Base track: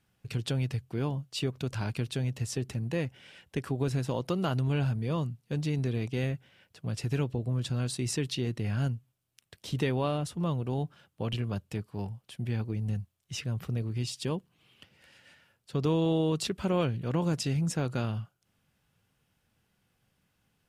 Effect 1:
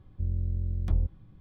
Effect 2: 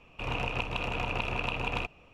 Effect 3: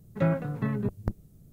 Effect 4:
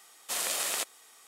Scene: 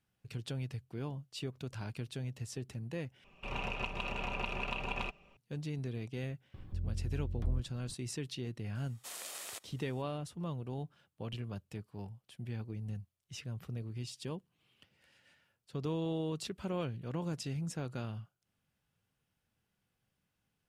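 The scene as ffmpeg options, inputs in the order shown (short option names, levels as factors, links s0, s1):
-filter_complex "[0:a]volume=0.355[s0];[2:a]aecho=1:1:5.1:0.58[s1];[1:a]acompressor=mode=upward:threshold=0.0398:ratio=2.5:attack=14:release=389:knee=2.83:detection=peak[s2];[s0]asplit=2[s3][s4];[s3]atrim=end=3.244[s5];[s1]atrim=end=2.13,asetpts=PTS-STARTPTS,volume=0.473[s6];[s4]atrim=start=5.366[s7];[s2]atrim=end=1.4,asetpts=PTS-STARTPTS,volume=0.398,afade=t=in:d=0.004:c=hsin,afade=t=out:st=1.396:d=0.004:c=hsin,adelay=6540[s8];[4:a]atrim=end=1.27,asetpts=PTS-STARTPTS,volume=0.211,afade=t=in:d=0.004:c=hsin,afade=t=out:st=1.266:d=0.004:c=hsin,adelay=8750[s9];[s5][s6]acrossfade=d=0.004:c1=hsin:c2=hsin[s10];[s10][s7]acrossfade=d=0.004:c1=hsin:c2=hsin[s11];[s11][s8][s9]amix=inputs=3:normalize=0"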